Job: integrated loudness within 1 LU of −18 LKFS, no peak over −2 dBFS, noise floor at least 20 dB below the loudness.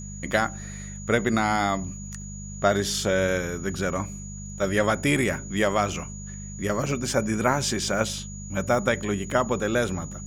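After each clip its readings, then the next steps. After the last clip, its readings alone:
mains hum 50 Hz; hum harmonics up to 200 Hz; level of the hum −35 dBFS; interfering tone 6,800 Hz; level of the tone −41 dBFS; integrated loudness −25.5 LKFS; sample peak −6.0 dBFS; target loudness −18.0 LKFS
→ hum removal 50 Hz, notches 4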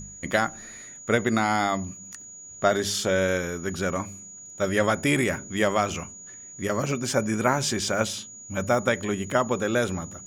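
mains hum none found; interfering tone 6,800 Hz; level of the tone −41 dBFS
→ notch filter 6,800 Hz, Q 30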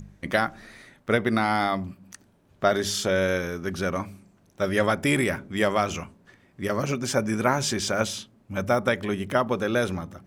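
interfering tone none found; integrated loudness −25.5 LKFS; sample peak −6.0 dBFS; target loudness −18.0 LKFS
→ level +7.5 dB
brickwall limiter −2 dBFS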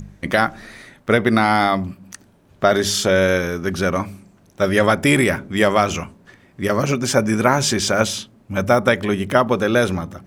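integrated loudness −18.5 LKFS; sample peak −2.0 dBFS; background noise floor −53 dBFS

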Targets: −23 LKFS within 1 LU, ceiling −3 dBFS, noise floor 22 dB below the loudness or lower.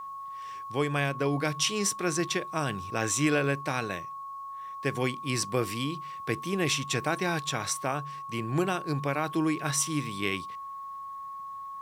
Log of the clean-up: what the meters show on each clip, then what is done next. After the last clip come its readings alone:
interfering tone 1,100 Hz; level of the tone −37 dBFS; integrated loudness −30.0 LKFS; sample peak −12.5 dBFS; target loudness −23.0 LKFS
→ notch filter 1,100 Hz, Q 30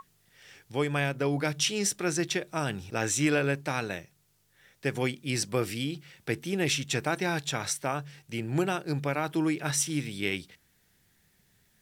interfering tone none found; integrated loudness −30.0 LKFS; sample peak −13.0 dBFS; target loudness −23.0 LKFS
→ level +7 dB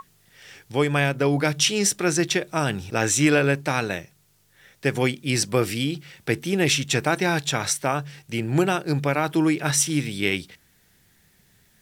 integrated loudness −23.0 LKFS; sample peak −6.0 dBFS; background noise floor −61 dBFS

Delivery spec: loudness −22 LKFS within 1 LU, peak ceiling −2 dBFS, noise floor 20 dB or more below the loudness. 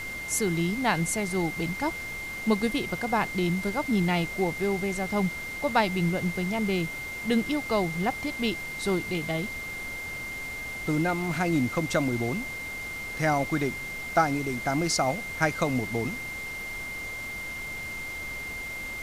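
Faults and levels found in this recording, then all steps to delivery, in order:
interfering tone 2,100 Hz; level of the tone −34 dBFS; background noise floor −36 dBFS; target noise floor −49 dBFS; integrated loudness −28.5 LKFS; sample peak −9.0 dBFS; target loudness −22.0 LKFS
→ notch filter 2,100 Hz, Q 30
noise reduction from a noise print 13 dB
level +6.5 dB

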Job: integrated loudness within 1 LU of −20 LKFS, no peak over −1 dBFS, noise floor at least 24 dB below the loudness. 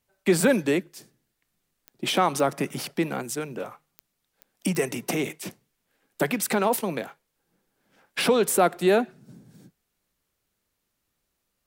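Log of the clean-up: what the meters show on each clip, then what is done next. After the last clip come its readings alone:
number of clicks 5; integrated loudness −25.0 LKFS; sample peak −8.0 dBFS; target loudness −20.0 LKFS
→ click removal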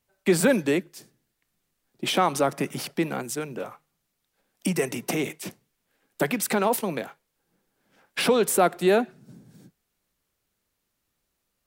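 number of clicks 0; integrated loudness −25.0 LKFS; sample peak −8.0 dBFS; target loudness −20.0 LKFS
→ level +5 dB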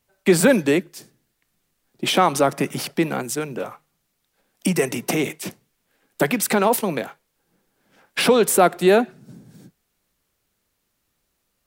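integrated loudness −20.0 LKFS; sample peak −3.0 dBFS; background noise floor −73 dBFS

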